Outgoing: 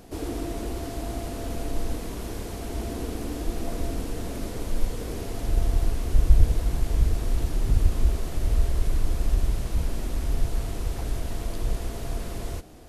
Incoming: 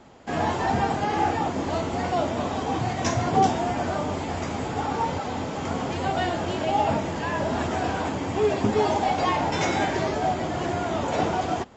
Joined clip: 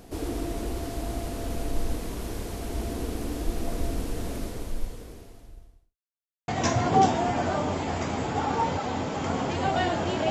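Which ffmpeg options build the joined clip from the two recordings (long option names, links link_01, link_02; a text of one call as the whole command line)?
ffmpeg -i cue0.wav -i cue1.wav -filter_complex "[0:a]apad=whole_dur=10.3,atrim=end=10.3,asplit=2[link_01][link_02];[link_01]atrim=end=5.97,asetpts=PTS-STARTPTS,afade=type=out:start_time=4.33:duration=1.64:curve=qua[link_03];[link_02]atrim=start=5.97:end=6.48,asetpts=PTS-STARTPTS,volume=0[link_04];[1:a]atrim=start=2.89:end=6.71,asetpts=PTS-STARTPTS,afade=type=in:duration=0.004:curve=hsin[link_05];[link_03][link_04][link_05]concat=n=3:v=0:a=1" out.wav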